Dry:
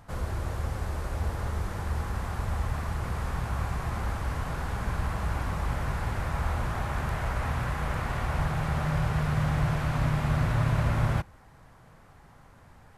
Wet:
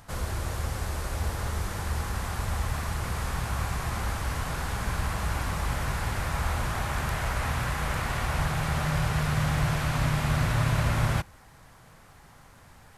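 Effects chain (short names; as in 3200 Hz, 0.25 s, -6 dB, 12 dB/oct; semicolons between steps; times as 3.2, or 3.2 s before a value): high shelf 2300 Hz +10 dB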